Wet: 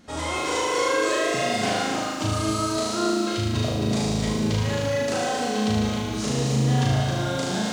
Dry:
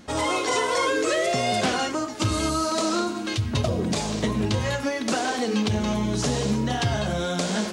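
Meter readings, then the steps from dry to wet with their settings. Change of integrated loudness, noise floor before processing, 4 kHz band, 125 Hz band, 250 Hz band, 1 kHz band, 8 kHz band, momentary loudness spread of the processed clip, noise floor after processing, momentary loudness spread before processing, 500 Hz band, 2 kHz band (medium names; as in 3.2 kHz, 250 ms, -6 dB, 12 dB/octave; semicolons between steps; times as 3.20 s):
+0.5 dB, -31 dBFS, 0.0 dB, +3.0 dB, +0.5 dB, 0.0 dB, 0.0 dB, 4 LU, -28 dBFS, 3 LU, +0.5 dB, -0.5 dB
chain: flutter echo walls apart 6.4 m, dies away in 1.3 s; bit-crushed delay 268 ms, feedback 35%, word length 7-bit, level -5.5 dB; trim -6 dB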